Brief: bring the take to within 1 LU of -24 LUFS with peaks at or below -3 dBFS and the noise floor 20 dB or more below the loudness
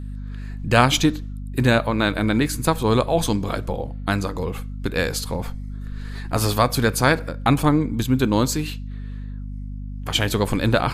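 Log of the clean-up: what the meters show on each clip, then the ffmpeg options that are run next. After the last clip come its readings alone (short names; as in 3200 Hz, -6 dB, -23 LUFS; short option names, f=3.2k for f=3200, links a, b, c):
hum 50 Hz; harmonics up to 250 Hz; hum level -29 dBFS; loudness -21.5 LUFS; peak -1.5 dBFS; loudness target -24.0 LUFS
-> -af "bandreject=f=50:t=h:w=6,bandreject=f=100:t=h:w=6,bandreject=f=150:t=h:w=6,bandreject=f=200:t=h:w=6,bandreject=f=250:t=h:w=6"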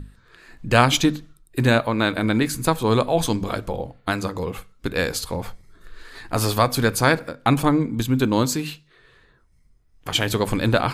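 hum none; loudness -21.5 LUFS; peak -1.5 dBFS; loudness target -24.0 LUFS
-> -af "volume=-2.5dB"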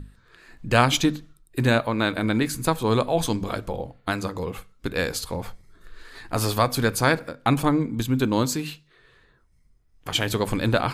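loudness -24.0 LUFS; peak -4.0 dBFS; noise floor -60 dBFS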